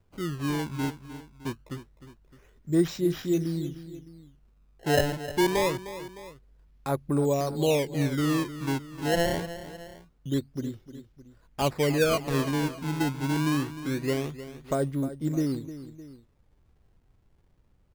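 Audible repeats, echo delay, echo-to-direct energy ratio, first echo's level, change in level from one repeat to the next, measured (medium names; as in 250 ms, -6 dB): 2, 306 ms, -12.5 dB, -13.5 dB, -5.5 dB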